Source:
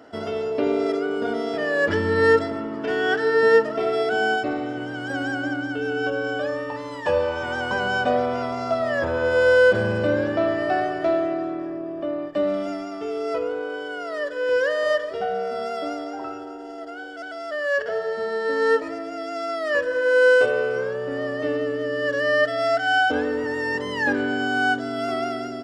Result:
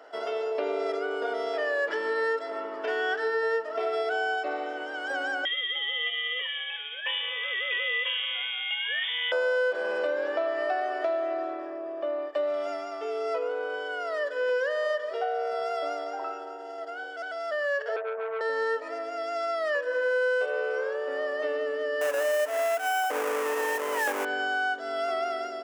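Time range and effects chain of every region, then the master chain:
5.45–9.32 s: high-order bell 650 Hz -9.5 dB 1.3 oct + frequency inversion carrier 3.5 kHz
17.96–18.41 s: steep low-pass 750 Hz + transformer saturation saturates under 1.1 kHz
22.01–24.25 s: square wave that keeps the level + peaking EQ 4.1 kHz -14 dB
whole clip: high-pass 450 Hz 24 dB/octave; treble shelf 4.3 kHz -5.5 dB; compression 5:1, threshold -25 dBFS

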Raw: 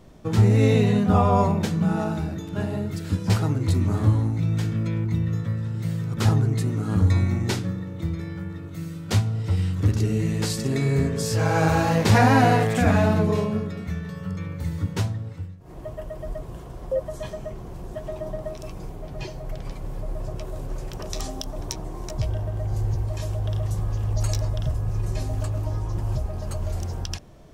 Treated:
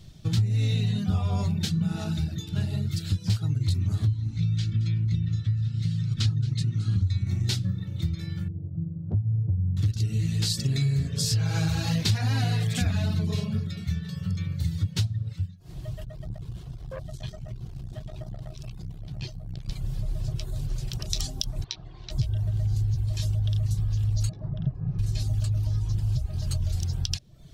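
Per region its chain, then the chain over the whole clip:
4.06–7.27 s: low-pass 6.3 kHz + peaking EQ 630 Hz -11 dB 1.5 oct + delay 222 ms -13.5 dB
8.48–9.77 s: inverse Chebyshev low-pass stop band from 3.2 kHz, stop band 70 dB + compression 2.5:1, threshold -22 dBFS
16.04–19.69 s: treble shelf 3.9 kHz -6.5 dB + transformer saturation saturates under 510 Hz
21.64–22.11 s: low-pass 4.1 kHz 24 dB/octave + bass shelf 440 Hz -11.5 dB
24.29–24.99 s: low-pass 1.2 kHz + resonant low shelf 120 Hz -10 dB, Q 3
whole clip: reverb removal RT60 0.53 s; ten-band graphic EQ 125 Hz +8 dB, 250 Hz -8 dB, 500 Hz -11 dB, 1 kHz -11 dB, 2 kHz -4 dB, 4 kHz +9 dB; compression 5:1, threshold -24 dBFS; trim +2 dB

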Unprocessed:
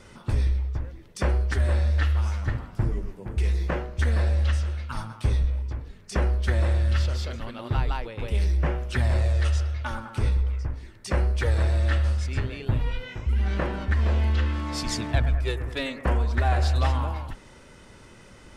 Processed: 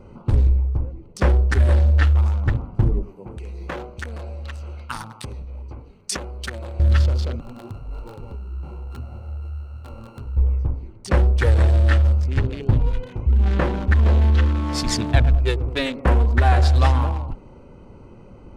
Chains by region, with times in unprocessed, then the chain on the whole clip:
3.03–6.80 s: compression 12:1, threshold -25 dBFS + tilt EQ +3 dB/octave
7.40–10.37 s: sorted samples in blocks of 32 samples + compression 8:1, threshold -32 dBFS + detune thickener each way 59 cents
whole clip: local Wiener filter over 25 samples; band-stop 630 Hz, Q 17; trim +7 dB

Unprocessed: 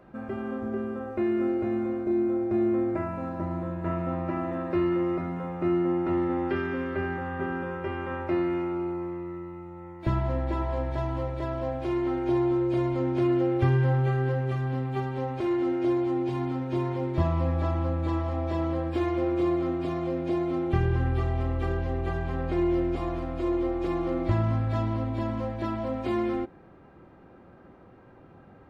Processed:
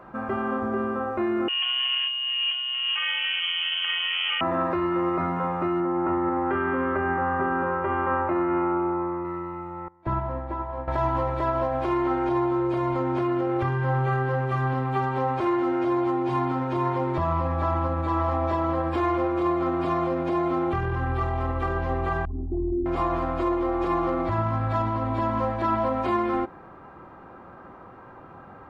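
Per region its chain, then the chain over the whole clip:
1.48–4.41 s: compressor with a negative ratio -30 dBFS + frequency inversion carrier 3.2 kHz
5.80–9.25 s: low-pass 1.9 kHz + doubling 15 ms -14 dB
9.88–10.88 s: treble shelf 2.6 kHz -12 dB + upward expansion 2.5:1, over -36 dBFS
22.25–22.86 s: resonances exaggerated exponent 3 + static phaser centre 520 Hz, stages 6
whole clip: peak limiter -23 dBFS; peaking EQ 1.1 kHz +12.5 dB 1.3 oct; trim +2.5 dB

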